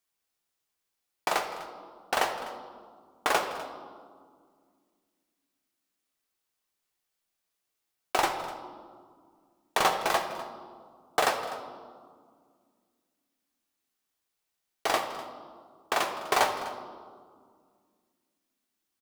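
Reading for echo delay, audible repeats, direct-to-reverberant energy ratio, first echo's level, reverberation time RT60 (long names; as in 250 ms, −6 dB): 250 ms, 1, 4.0 dB, −18.0 dB, 2.0 s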